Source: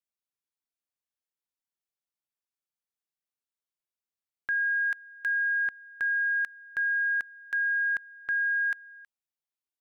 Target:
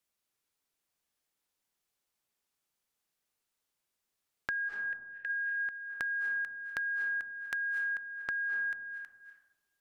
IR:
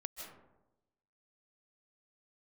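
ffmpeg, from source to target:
-filter_complex "[0:a]asplit=3[a][b][c];[a]afade=t=out:st=4.68:d=0.02[d];[b]asplit=3[e][f][g];[e]bandpass=f=530:t=q:w=8,volume=0dB[h];[f]bandpass=f=1.84k:t=q:w=8,volume=-6dB[i];[g]bandpass=f=2.48k:t=q:w=8,volume=-9dB[j];[h][i][j]amix=inputs=3:normalize=0,afade=t=in:st=4.68:d=0.02,afade=t=out:st=5.29:d=0.02[k];[c]afade=t=in:st=5.29:d=0.02[l];[d][k][l]amix=inputs=3:normalize=0,acompressor=threshold=-46dB:ratio=4,asplit=2[m][n];[1:a]atrim=start_sample=2205,asetrate=28224,aresample=44100[o];[n][o]afir=irnorm=-1:irlink=0,volume=3dB[p];[m][p]amix=inputs=2:normalize=0,volume=2.5dB"

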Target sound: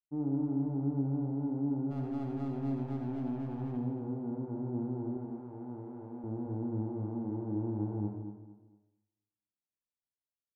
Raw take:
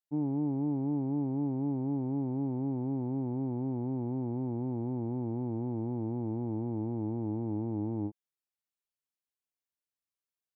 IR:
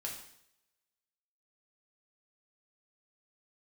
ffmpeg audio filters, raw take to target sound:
-filter_complex "[0:a]adynamicsmooth=sensitivity=7.5:basefreq=690,lowpass=1.1k,asplit=2[a][b];[b]adelay=29,volume=-7dB[c];[a][c]amix=inputs=2:normalize=0,asplit=3[d][e][f];[d]afade=t=out:st=1.9:d=0.02[g];[e]aeval=exprs='0.0316*(cos(1*acos(clip(val(0)/0.0316,-1,1)))-cos(1*PI/2))+0.000501*(cos(6*acos(clip(val(0)/0.0316,-1,1)))-cos(6*PI/2))':c=same,afade=t=in:st=1.9:d=0.02,afade=t=out:st=3.76:d=0.02[h];[f]afade=t=in:st=3.76:d=0.02[i];[g][h][i]amix=inputs=3:normalize=0,asettb=1/sr,asplit=3[j][k][l];[j]atrim=end=5.174[m];[k]atrim=start=5.17:end=6.24,asetpts=PTS-STARTPTS,afade=t=in:d=0.004:c=qsin,afade=t=out:st=1.066:d=0.004:c=qsin,lowshelf=f=490:g=-11[n];[l]atrim=start=6.236[o];[m][n]acrossfade=d=0.004:c1=hsin:c2=qsin[p];[p][o]acrossfade=d=0.004:c1=qsin:c2=hsin,aecho=1:1:228|456|684:0.299|0.0955|0.0306,asplit=2[q][r];[1:a]atrim=start_sample=2205,adelay=73[s];[r][s]afir=irnorm=-1:irlink=0,volume=-2.5dB[t];[q][t]amix=inputs=2:normalize=0,volume=-4dB"

